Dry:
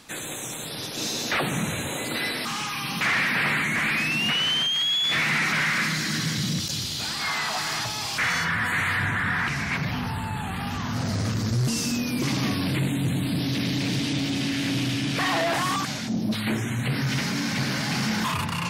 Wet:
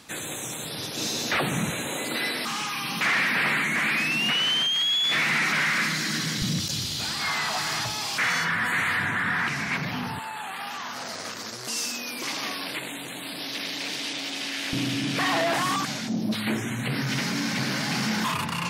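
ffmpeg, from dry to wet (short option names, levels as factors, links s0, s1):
-af "asetnsamples=n=441:p=0,asendcmd='1.7 highpass f 180;6.42 highpass f 46;7.95 highpass f 170;10.19 highpass f 570;14.73 highpass f 150',highpass=49"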